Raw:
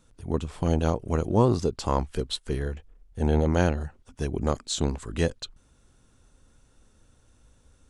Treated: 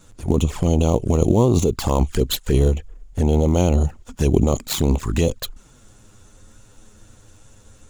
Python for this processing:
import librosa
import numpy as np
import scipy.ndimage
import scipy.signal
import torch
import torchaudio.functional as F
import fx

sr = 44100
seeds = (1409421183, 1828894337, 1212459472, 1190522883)

p1 = fx.dead_time(x, sr, dead_ms=0.058)
p2 = fx.peak_eq(p1, sr, hz=7000.0, db=10.0, octaves=0.23)
p3 = fx.over_compress(p2, sr, threshold_db=-28.0, ratio=-0.5)
p4 = p2 + (p3 * 10.0 ** (3.0 / 20.0))
p5 = fx.env_flanger(p4, sr, rest_ms=11.5, full_db=-17.5)
y = p5 * 10.0 ** (4.0 / 20.0)